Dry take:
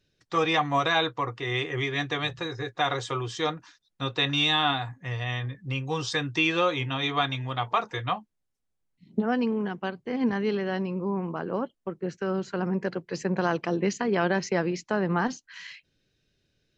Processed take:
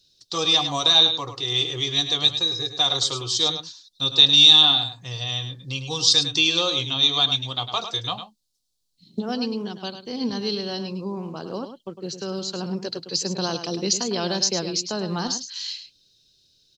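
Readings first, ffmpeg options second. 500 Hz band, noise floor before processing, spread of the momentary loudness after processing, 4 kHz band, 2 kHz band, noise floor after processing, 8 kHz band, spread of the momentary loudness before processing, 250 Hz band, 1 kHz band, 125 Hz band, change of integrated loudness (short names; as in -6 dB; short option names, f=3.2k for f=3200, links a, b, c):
-1.5 dB, -78 dBFS, 18 LU, +14.5 dB, -3.0 dB, -65 dBFS, +16.0 dB, 9 LU, -1.0 dB, -3.0 dB, -1.0 dB, +8.0 dB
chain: -filter_complex "[0:a]highshelf=f=2.9k:t=q:w=3:g=13.5,asplit=2[a][b];[b]aecho=0:1:104:0.335[c];[a][c]amix=inputs=2:normalize=0,volume=-1.5dB"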